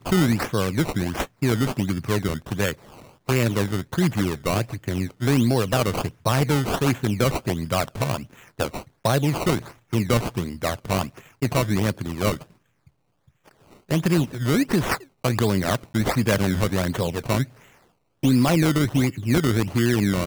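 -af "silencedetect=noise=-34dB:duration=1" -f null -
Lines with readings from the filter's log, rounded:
silence_start: 12.42
silence_end: 13.91 | silence_duration: 1.48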